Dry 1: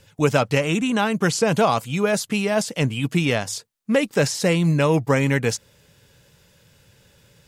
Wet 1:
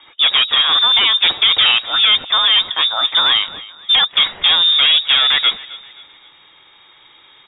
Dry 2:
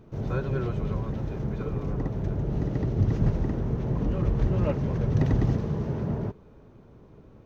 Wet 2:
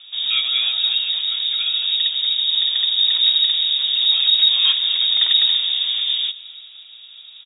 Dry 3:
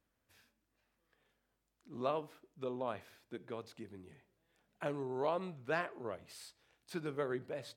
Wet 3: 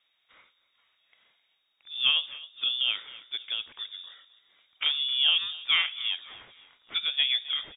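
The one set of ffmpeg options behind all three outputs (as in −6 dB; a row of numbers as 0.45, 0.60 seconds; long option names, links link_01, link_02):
-filter_complex "[0:a]equalizer=frequency=120:width=2.1:gain=-15,asplit=2[link_01][link_02];[link_02]aeval=exprs='0.596*sin(PI/2*4.47*val(0)/0.596)':channel_layout=same,volume=-5dB[link_03];[link_01][link_03]amix=inputs=2:normalize=0,asplit=4[link_04][link_05][link_06][link_07];[link_05]adelay=263,afreqshift=-30,volume=-19dB[link_08];[link_06]adelay=526,afreqshift=-60,volume=-27dB[link_09];[link_07]adelay=789,afreqshift=-90,volume=-34.9dB[link_10];[link_04][link_08][link_09][link_10]amix=inputs=4:normalize=0,lowpass=frequency=3200:width_type=q:width=0.5098,lowpass=frequency=3200:width_type=q:width=0.6013,lowpass=frequency=3200:width_type=q:width=0.9,lowpass=frequency=3200:width_type=q:width=2.563,afreqshift=-3800,volume=-2dB"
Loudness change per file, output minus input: +9.5, +12.5, +14.5 LU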